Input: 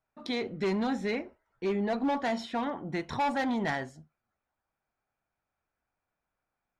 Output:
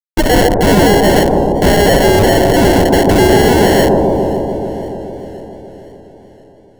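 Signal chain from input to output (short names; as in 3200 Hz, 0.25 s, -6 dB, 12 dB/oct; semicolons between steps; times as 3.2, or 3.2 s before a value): inverse Chebyshev high-pass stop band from 290 Hz, stop band 50 dB; resonant high shelf 2100 Hz -13.5 dB, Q 1.5; notch 1300 Hz, Q 11; in parallel at -1 dB: compressor, threshold -43 dBFS, peak gain reduction 16.5 dB; on the sum: fuzz box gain 58 dB, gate -55 dBFS; sample-and-hold 36×; soft clip -13 dBFS, distortion -27 dB; on a send: analogue delay 0.144 s, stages 1024, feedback 80%, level -4 dB; on the sum: maximiser +8.5 dB; warbling echo 0.518 s, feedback 56%, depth 64 cents, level -20.5 dB; gain -1 dB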